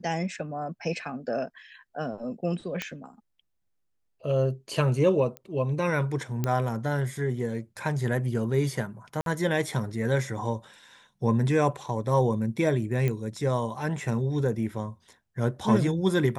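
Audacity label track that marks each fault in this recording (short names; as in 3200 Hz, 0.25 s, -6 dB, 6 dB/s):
2.820000	2.820000	pop -15 dBFS
5.370000	5.370000	pop -22 dBFS
6.440000	6.440000	pop -14 dBFS
9.210000	9.260000	gap 52 ms
13.080000	13.080000	pop -16 dBFS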